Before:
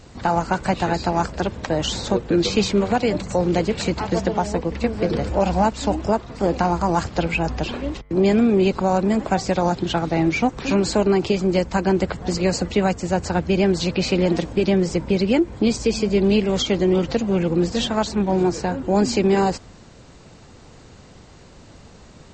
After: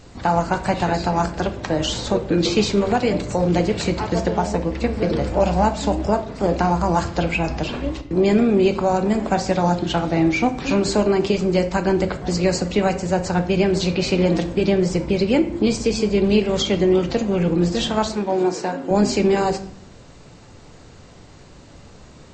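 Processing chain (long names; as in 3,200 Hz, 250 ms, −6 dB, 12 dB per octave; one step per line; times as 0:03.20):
0:18.12–0:18.91: high-pass filter 260 Hz 12 dB per octave
rectangular room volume 90 cubic metres, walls mixed, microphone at 0.33 metres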